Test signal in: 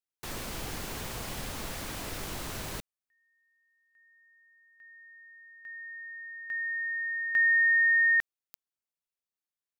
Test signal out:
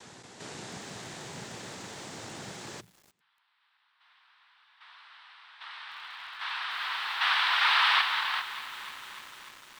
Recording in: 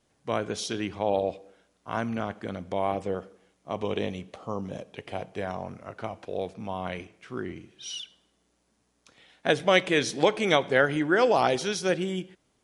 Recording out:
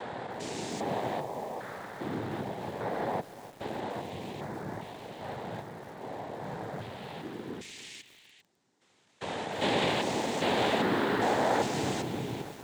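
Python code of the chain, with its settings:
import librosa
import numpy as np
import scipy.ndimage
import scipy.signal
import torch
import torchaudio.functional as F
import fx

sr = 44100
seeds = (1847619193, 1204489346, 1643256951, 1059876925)

y = fx.spec_steps(x, sr, hold_ms=400)
y = fx.hum_notches(y, sr, base_hz=50, count=4)
y = fx.noise_vocoder(y, sr, seeds[0], bands=6)
y = fx.echo_crushed(y, sr, ms=299, feedback_pct=80, bits=7, wet_db=-14.5)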